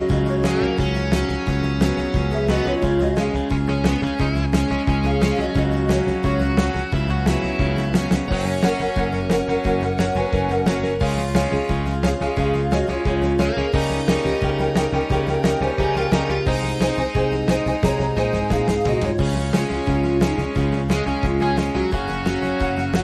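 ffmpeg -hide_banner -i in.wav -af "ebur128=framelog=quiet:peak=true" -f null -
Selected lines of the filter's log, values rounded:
Integrated loudness:
  I:         -20.7 LUFS
  Threshold: -30.7 LUFS
Loudness range:
  LRA:         0.6 LU
  Threshold: -40.6 LUFS
  LRA low:   -20.9 LUFS
  LRA high:  -20.3 LUFS
True peak:
  Peak:       -4.3 dBFS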